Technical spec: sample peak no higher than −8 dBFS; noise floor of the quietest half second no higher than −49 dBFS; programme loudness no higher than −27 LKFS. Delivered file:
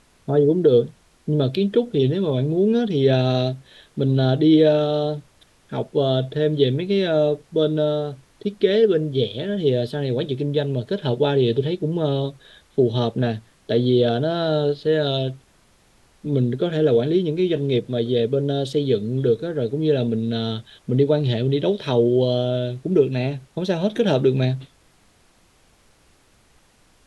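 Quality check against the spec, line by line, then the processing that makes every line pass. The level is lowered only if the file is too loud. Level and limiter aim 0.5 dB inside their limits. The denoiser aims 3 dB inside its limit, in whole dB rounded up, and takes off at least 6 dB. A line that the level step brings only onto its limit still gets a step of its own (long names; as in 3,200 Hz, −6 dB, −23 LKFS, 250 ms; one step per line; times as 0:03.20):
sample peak −5.0 dBFS: out of spec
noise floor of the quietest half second −57 dBFS: in spec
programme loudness −21.0 LKFS: out of spec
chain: level −6.5 dB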